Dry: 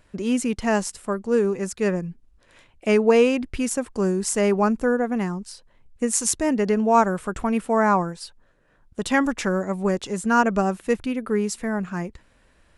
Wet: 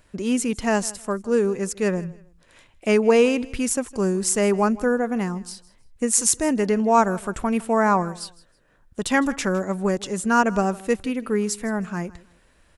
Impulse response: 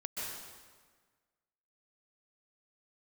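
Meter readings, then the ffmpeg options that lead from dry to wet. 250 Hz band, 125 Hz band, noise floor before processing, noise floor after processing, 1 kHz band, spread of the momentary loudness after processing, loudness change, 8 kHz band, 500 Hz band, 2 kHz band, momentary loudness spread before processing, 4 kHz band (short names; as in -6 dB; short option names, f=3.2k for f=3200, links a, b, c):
0.0 dB, 0.0 dB, -60 dBFS, -59 dBFS, 0.0 dB, 12 LU, +0.5 dB, +3.5 dB, 0.0 dB, +0.5 dB, 12 LU, +1.5 dB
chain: -af "highshelf=f=5.9k:g=5.5,aecho=1:1:159|318:0.0944|0.0245"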